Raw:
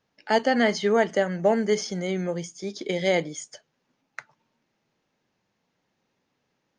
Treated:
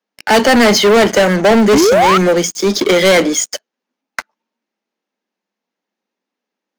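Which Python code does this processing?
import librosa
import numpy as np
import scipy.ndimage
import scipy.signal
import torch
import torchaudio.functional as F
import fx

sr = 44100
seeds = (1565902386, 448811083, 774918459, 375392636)

y = fx.spec_paint(x, sr, seeds[0], shape='rise', start_s=1.72, length_s=0.46, low_hz=240.0, high_hz=1400.0, level_db=-26.0)
y = scipy.signal.sosfilt(scipy.signal.butter(12, 190.0, 'highpass', fs=sr, output='sos'), y)
y = fx.leveller(y, sr, passes=5)
y = y * librosa.db_to_amplitude(4.0)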